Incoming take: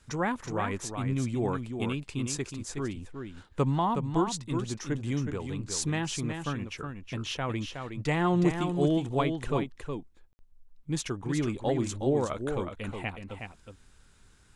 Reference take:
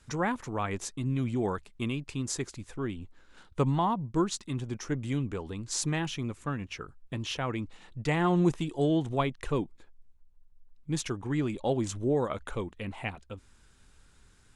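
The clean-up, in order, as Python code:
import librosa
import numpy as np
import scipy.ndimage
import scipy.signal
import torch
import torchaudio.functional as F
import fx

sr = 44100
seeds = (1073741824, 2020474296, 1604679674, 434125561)

y = fx.fix_ambience(x, sr, seeds[0], print_start_s=14.04, print_end_s=14.54, start_s=10.33, end_s=10.39)
y = fx.fix_echo_inverse(y, sr, delay_ms=367, level_db=-6.5)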